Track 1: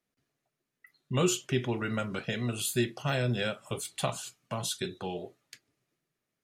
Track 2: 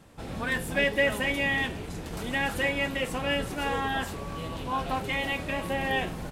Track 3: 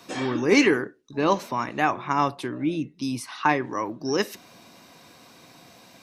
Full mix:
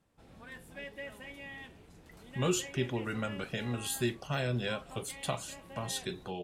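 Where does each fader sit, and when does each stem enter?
−3.5 dB, −19.5 dB, muted; 1.25 s, 0.00 s, muted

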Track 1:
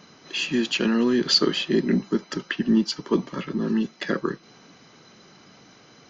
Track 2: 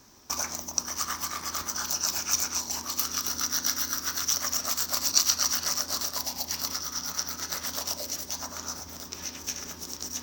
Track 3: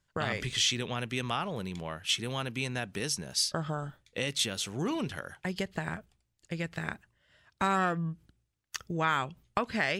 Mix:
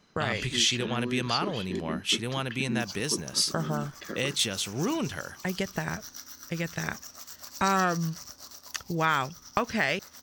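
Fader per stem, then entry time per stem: −13.0, −16.0, +3.0 decibels; 0.00, 2.50, 0.00 seconds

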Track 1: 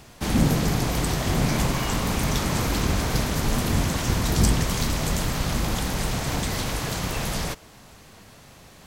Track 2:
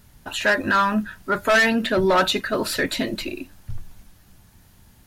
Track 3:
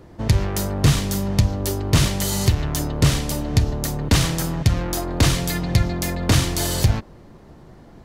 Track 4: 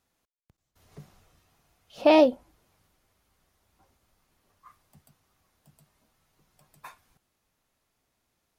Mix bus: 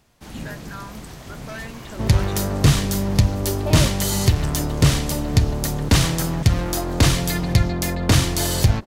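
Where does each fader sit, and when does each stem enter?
−13.5, −19.0, +1.0, −11.0 decibels; 0.00, 0.00, 1.80, 1.60 seconds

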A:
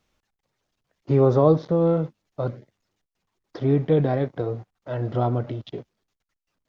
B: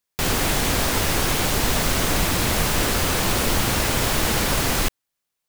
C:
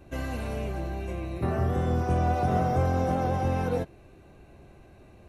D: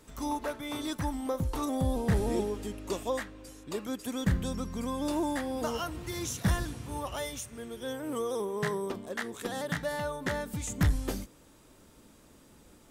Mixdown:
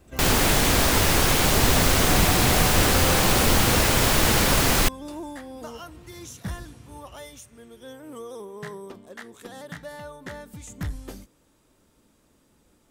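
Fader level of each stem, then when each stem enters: muted, +1.5 dB, −4.5 dB, −5.5 dB; muted, 0.00 s, 0.00 s, 0.00 s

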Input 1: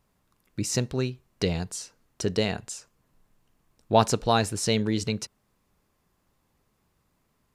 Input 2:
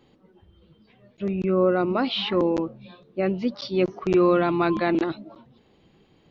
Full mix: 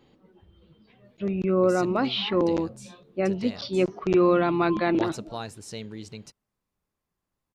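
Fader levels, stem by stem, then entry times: −13.0, −1.0 decibels; 1.05, 0.00 seconds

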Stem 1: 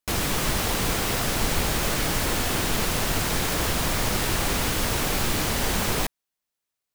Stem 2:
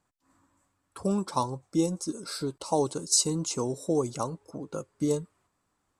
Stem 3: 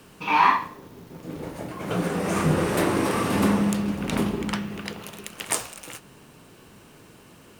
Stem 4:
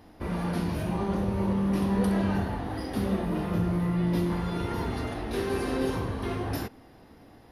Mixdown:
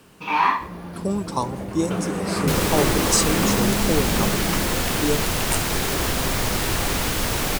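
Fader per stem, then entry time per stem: +1.5, +3.0, −1.0, −6.0 decibels; 2.40, 0.00, 0.00, 0.40 seconds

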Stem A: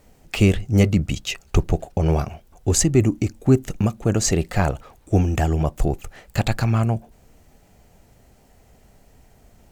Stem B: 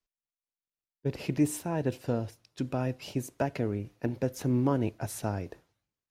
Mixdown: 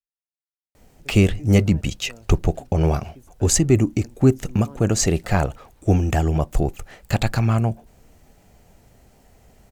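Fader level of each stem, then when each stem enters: +0.5, −15.5 decibels; 0.75, 0.00 seconds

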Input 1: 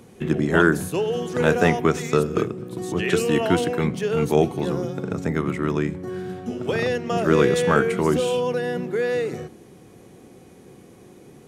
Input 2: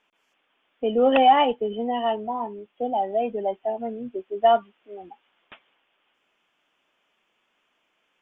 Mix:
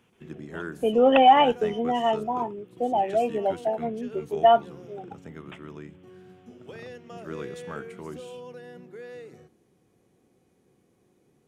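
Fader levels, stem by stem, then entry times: −18.5, +0.5 decibels; 0.00, 0.00 seconds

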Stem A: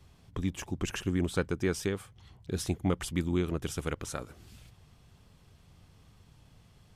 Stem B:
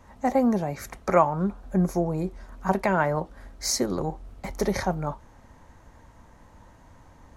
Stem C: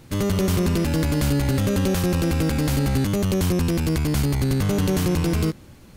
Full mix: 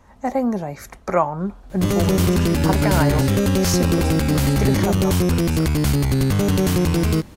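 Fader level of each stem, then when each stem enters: 0.0, +1.0, +3.0 decibels; 1.45, 0.00, 1.70 seconds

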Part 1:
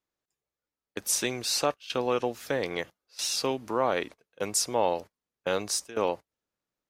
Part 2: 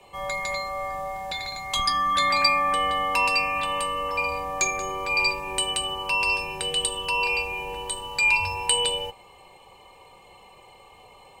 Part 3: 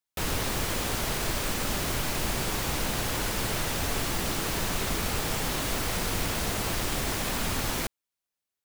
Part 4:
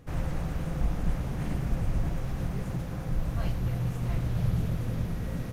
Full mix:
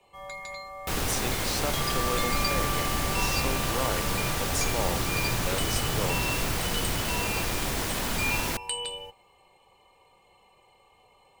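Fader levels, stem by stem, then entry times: −6.0, −10.0, 0.0, −6.5 decibels; 0.00, 0.00, 0.70, 1.50 seconds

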